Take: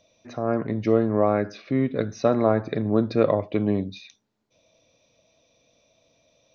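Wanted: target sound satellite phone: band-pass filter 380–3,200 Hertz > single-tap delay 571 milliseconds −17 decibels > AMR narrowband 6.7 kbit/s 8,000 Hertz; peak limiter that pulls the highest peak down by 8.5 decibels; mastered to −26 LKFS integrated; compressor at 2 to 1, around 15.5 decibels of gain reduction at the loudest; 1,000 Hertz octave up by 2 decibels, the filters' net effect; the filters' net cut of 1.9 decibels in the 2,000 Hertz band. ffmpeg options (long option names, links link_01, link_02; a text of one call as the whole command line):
ffmpeg -i in.wav -af "equalizer=frequency=1000:width_type=o:gain=4,equalizer=frequency=2000:width_type=o:gain=-3.5,acompressor=threshold=-43dB:ratio=2,alimiter=level_in=4dB:limit=-24dB:level=0:latency=1,volume=-4dB,highpass=380,lowpass=3200,aecho=1:1:571:0.141,volume=18.5dB" -ar 8000 -c:a libopencore_amrnb -b:a 6700 out.amr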